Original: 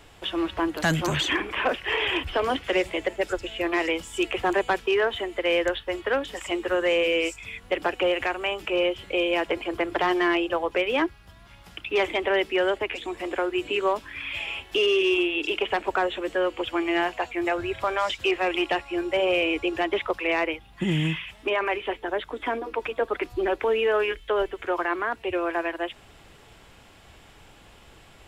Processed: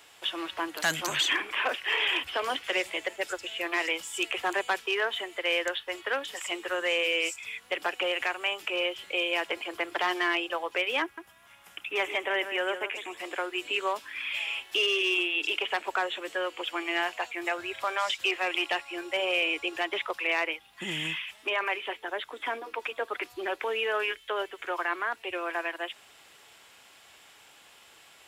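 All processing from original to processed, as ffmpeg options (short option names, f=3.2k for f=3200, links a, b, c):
-filter_complex "[0:a]asettb=1/sr,asplit=3[a][b][c];[a]atrim=end=11.024[d];[b]atrim=start=11.02:end=13.17,asetpts=PTS-STARTPTS,afade=t=in:d=0.004:c=qsin,afade=t=out:st=2.146:d=0.004:c=qsin,equalizer=f=4.5k:t=o:w=0.67:g=-11,aecho=1:1:154:0.316,atrim=end_sample=94815[e];[c]atrim=start=13.166[f];[d][e]acrossfade=d=0.004:c1=hsin:c2=qsin[g];[g][f]acrossfade=d=0.004:c1=qsin:c2=hsin,highpass=f=1.2k:p=1,highshelf=f=6.4k:g=5"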